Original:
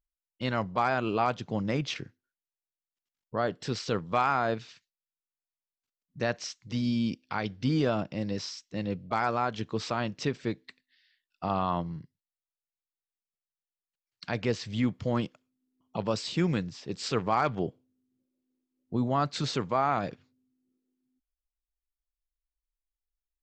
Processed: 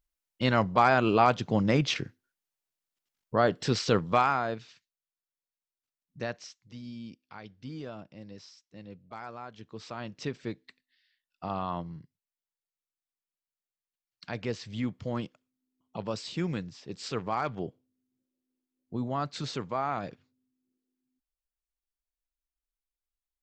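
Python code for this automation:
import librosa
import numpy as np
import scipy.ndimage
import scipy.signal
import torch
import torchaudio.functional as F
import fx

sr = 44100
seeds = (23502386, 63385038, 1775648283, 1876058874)

y = fx.gain(x, sr, db=fx.line((4.06, 5.0), (4.5, -4.0), (6.19, -4.0), (6.79, -14.0), (9.55, -14.0), (10.28, -4.5)))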